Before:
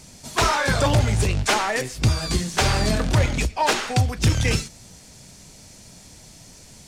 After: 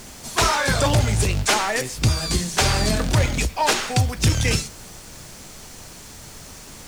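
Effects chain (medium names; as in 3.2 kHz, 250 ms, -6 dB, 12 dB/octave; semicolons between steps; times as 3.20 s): treble shelf 4.6 kHz +5.5 dB; added noise pink -43 dBFS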